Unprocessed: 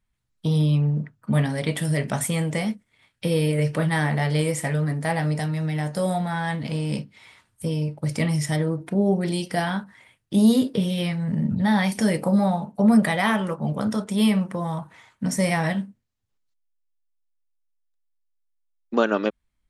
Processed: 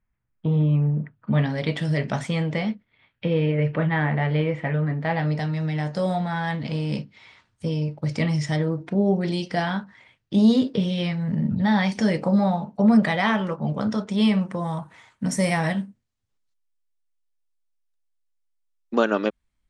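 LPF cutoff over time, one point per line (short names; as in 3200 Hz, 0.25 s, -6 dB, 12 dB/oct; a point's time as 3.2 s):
LPF 24 dB/oct
0.84 s 2300 Hz
1.67 s 5700 Hz
2.19 s 5700 Hz
3.37 s 2900 Hz
4.82 s 2900 Hz
5.61 s 6200 Hz
14.16 s 6200 Hz
14.81 s 10000 Hz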